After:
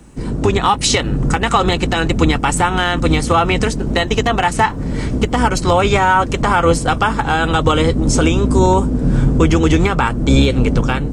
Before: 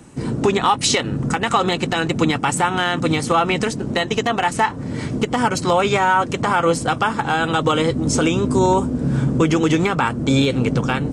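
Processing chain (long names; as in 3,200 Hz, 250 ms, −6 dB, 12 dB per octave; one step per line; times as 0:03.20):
sub-octave generator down 2 octaves, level +1 dB
bit-depth reduction 12 bits, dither triangular
automatic gain control
level −1 dB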